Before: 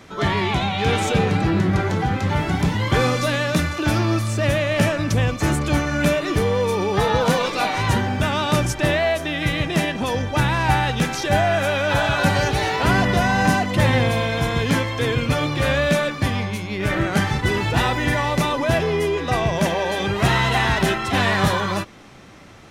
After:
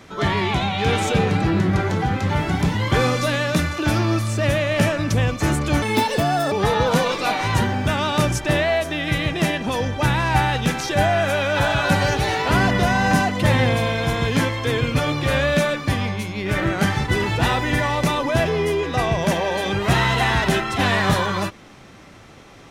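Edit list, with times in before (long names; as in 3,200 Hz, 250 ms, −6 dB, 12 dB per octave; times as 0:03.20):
0:05.82–0:06.86: play speed 149%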